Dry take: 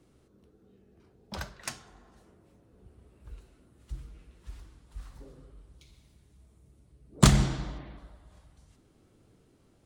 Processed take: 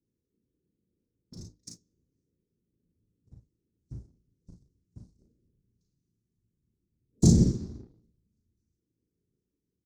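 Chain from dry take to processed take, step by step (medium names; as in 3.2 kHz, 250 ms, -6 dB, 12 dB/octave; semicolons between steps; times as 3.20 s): waveshaping leveller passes 2; elliptic band-stop 320–6000 Hz, stop band 40 dB; peaking EQ 3.8 kHz +12.5 dB 2.9 oct; whisper effect; high-pass 57 Hz 6 dB/octave; tape spacing loss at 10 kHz 22 dB; hum notches 50/100/150/200/250/300 Hz; waveshaping leveller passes 1; on a send: early reflections 36 ms -4 dB, 53 ms -9.5 dB; on the sum: upward expansion 1.5:1, over -26 dBFS; trim -3.5 dB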